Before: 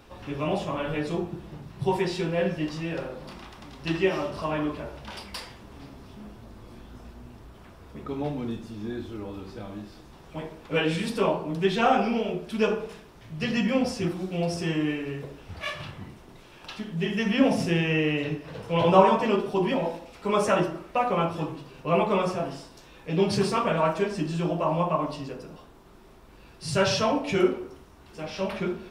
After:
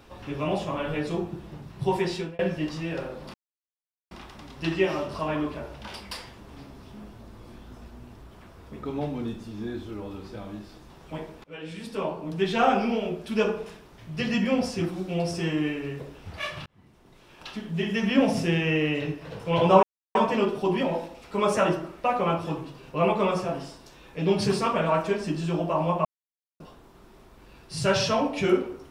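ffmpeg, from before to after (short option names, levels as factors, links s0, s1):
-filter_complex "[0:a]asplit=8[s0][s1][s2][s3][s4][s5][s6][s7];[s0]atrim=end=2.39,asetpts=PTS-STARTPTS,afade=t=out:st=2.14:d=0.25[s8];[s1]atrim=start=2.39:end=3.34,asetpts=PTS-STARTPTS,afade=t=in:d=0.004:c=hsin,afade=t=out:st=0.946:d=0.004:c=hsin,apad=pad_dur=0.77[s9];[s2]atrim=start=3.34:end=10.67,asetpts=PTS-STARTPTS,afade=t=in:d=0.004:c=hsin,afade=t=out:st=7.326:d=0.004:c=hsin:silence=0.0668344[s10];[s3]atrim=start=10.67:end=15.89,asetpts=PTS-STARTPTS,afade=t=in:d=1.21:silence=0.0668344,afade=t=out:st=5.216:d=0.004:c=hsin[s11];[s4]atrim=start=15.89:end=19.06,asetpts=PTS-STARTPTS,afade=t=in:d=0.89,afade=t=out:st=3.166:d=0.004:c=hsin,apad=pad_dur=0.32[s12];[s5]atrim=start=19.06:end=24.96,asetpts=PTS-STARTPTS,afade=t=in:d=0.004:c=hsin,afade=t=out:st=5.896:d=0.004:c=hsin[s13];[s6]atrim=start=24.96:end=25.51,asetpts=PTS-STARTPTS,volume=0[s14];[s7]atrim=start=25.51,asetpts=PTS-STARTPTS,afade=t=in:d=0.004:c=hsin[s15];[s8][s9][s10][s11][s12][s13][s14][s15]concat=n=8:v=0:a=1"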